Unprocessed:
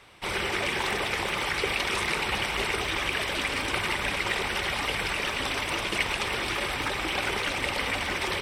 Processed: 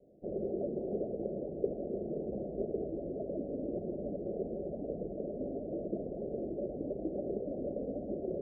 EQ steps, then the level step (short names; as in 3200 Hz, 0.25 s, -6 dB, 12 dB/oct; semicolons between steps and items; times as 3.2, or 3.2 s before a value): steep low-pass 660 Hz 96 dB/oct; resonant low shelf 140 Hz -9.5 dB, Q 1.5; -1.5 dB